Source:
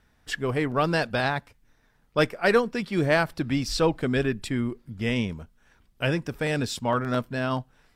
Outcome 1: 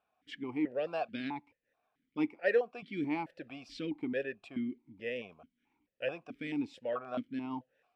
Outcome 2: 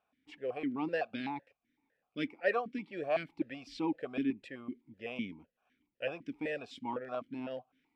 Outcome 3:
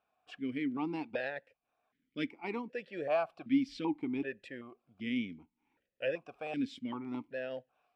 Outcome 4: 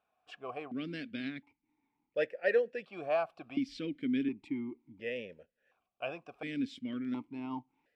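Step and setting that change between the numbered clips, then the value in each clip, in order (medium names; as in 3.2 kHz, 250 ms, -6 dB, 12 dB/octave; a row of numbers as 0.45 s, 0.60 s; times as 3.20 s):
stepped vowel filter, rate: 4.6 Hz, 7.9 Hz, 2.6 Hz, 1.4 Hz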